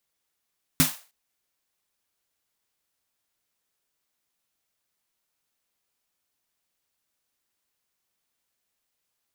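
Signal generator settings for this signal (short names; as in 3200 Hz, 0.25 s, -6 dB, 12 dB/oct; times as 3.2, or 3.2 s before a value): snare drum length 0.31 s, tones 160 Hz, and 260 Hz, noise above 570 Hz, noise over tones 0 dB, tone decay 0.16 s, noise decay 0.35 s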